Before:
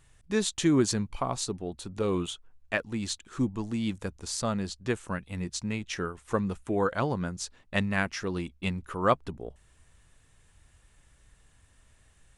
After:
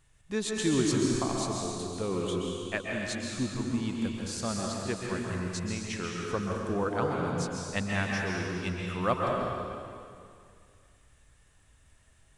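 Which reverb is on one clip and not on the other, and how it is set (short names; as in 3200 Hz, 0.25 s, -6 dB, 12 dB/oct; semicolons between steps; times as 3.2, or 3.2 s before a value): plate-style reverb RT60 2.3 s, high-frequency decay 1×, pre-delay 0.115 s, DRR -2 dB; gain -4.5 dB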